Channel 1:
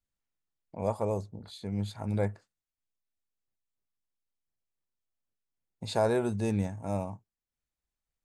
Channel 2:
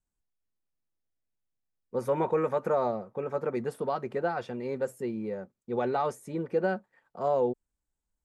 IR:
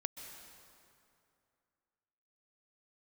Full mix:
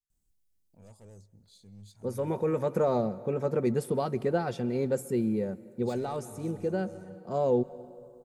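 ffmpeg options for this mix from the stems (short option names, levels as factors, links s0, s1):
-filter_complex "[0:a]equalizer=f=6200:w=0.72:g=10.5,asoftclip=type=tanh:threshold=0.0376,volume=0.2,asplit=3[s0][s1][s2];[s1]volume=0.211[s3];[1:a]acontrast=53,adelay=100,volume=1.33,asplit=2[s4][s5];[s5]volume=0.299[s6];[s2]apad=whole_len=368007[s7];[s4][s7]sidechaincompress=threshold=0.00224:ratio=8:attack=7.9:release=886[s8];[2:a]atrim=start_sample=2205[s9];[s3][s6]amix=inputs=2:normalize=0[s10];[s10][s9]afir=irnorm=-1:irlink=0[s11];[s0][s8][s11]amix=inputs=3:normalize=0,equalizer=f=1200:w=0.38:g=-13.5"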